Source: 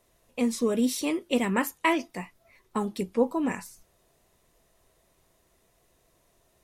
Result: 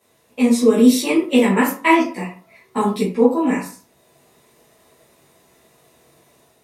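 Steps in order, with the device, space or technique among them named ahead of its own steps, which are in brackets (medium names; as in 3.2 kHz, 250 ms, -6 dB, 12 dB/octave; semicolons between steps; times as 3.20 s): far laptop microphone (reverberation RT60 0.40 s, pre-delay 8 ms, DRR -9 dB; high-pass 130 Hz 12 dB/octave; level rider gain up to 4 dB)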